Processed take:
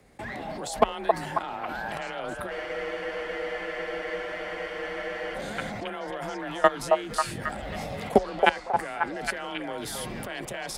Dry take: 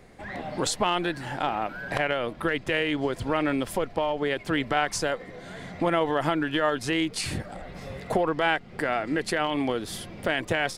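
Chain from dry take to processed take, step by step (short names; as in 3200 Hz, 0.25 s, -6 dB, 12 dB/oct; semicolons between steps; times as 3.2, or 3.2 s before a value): high shelf 8400 Hz +8.5 dB; level quantiser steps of 22 dB; frequency shift +26 Hz; on a send: delay with a stepping band-pass 0.271 s, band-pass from 690 Hz, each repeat 0.7 oct, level 0 dB; on the sum: spectral freeze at 2.54, 2.82 s; gain +8 dB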